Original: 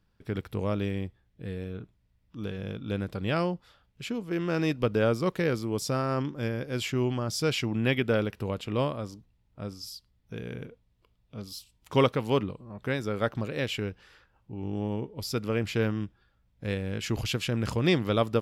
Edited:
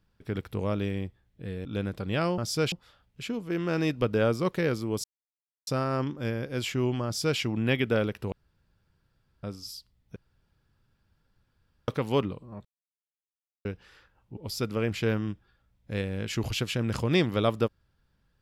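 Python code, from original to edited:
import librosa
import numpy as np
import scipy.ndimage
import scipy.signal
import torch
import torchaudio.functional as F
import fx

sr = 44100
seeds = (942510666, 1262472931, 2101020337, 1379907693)

y = fx.edit(x, sr, fx.cut(start_s=1.65, length_s=1.15),
    fx.insert_silence(at_s=5.85, length_s=0.63),
    fx.duplicate(start_s=7.23, length_s=0.34, to_s=3.53),
    fx.room_tone_fill(start_s=8.5, length_s=1.11),
    fx.room_tone_fill(start_s=10.34, length_s=1.72),
    fx.silence(start_s=12.83, length_s=1.0),
    fx.cut(start_s=14.55, length_s=0.55), tone=tone)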